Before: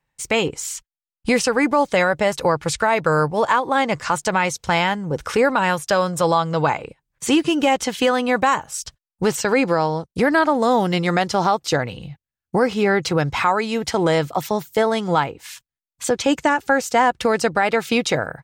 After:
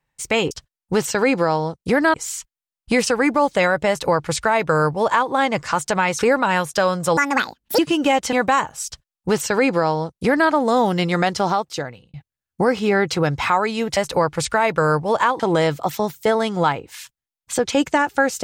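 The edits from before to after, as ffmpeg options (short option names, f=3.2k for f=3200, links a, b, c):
-filter_complex "[0:a]asplit=10[a][b][c][d][e][f][g][h][i][j];[a]atrim=end=0.512[k];[b]atrim=start=8.808:end=10.442[l];[c]atrim=start=0.508:end=4.562[m];[d]atrim=start=5.318:end=6.304[n];[e]atrim=start=6.3:end=7.36,asetpts=PTS-STARTPTS,asetrate=75852,aresample=44100[o];[f]atrim=start=7.356:end=7.902[p];[g]atrim=start=8.268:end=12.08,asetpts=PTS-STARTPTS,afade=t=out:st=3.062:d=0.75[q];[h]atrim=start=12.08:end=13.912,asetpts=PTS-STARTPTS,afade=t=in:d=0.004:c=hsin[r];[i]atrim=start=2.248:end=3.682[s];[j]atrim=start=13.908[t];[k][l]acrossfade=d=0.004:c1=hsin:c2=hsin[u];[u][m]acrossfade=d=0.004:c1=hsin:c2=hsin[v];[v][n]acrossfade=d=0.004:c1=hsin:c2=hsin[w];[w][o]acrossfade=d=0.004:c1=hsin:c2=hsin[x];[x][p]acrossfade=d=0.004:c1=hsin:c2=hsin[y];[q][r]concat=n=2:v=0:a=1[z];[y][z]acrossfade=d=0.004:c1=hsin:c2=hsin[aa];[aa][s]acrossfade=d=0.004:c1=hsin:c2=hsin[ab];[ab][t]acrossfade=d=0.004:c1=hsin:c2=hsin"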